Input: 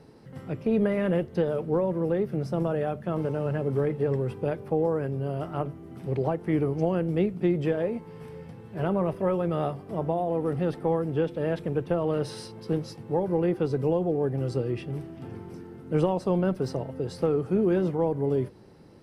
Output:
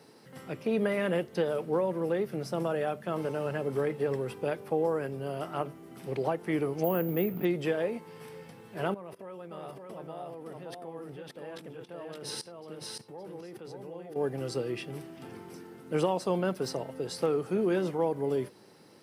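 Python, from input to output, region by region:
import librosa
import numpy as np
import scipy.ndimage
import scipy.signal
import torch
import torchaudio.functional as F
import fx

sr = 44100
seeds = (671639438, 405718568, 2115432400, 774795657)

y = fx.chain(x, sr, fx.air_absorb(metres=330.0),
    fx.resample_bad(factor=3, down='none', up='hold'),
    fx.env_flatten(amount_pct=50), at=(6.84, 7.45))
y = fx.chain(y, sr, fx.level_steps(step_db=20),
    fx.echo_single(ms=566, db=-3.0), at=(8.94, 14.16))
y = scipy.signal.sosfilt(scipy.signal.butter(2, 130.0, 'highpass', fs=sr, output='sos'), y)
y = fx.tilt_eq(y, sr, slope=2.5)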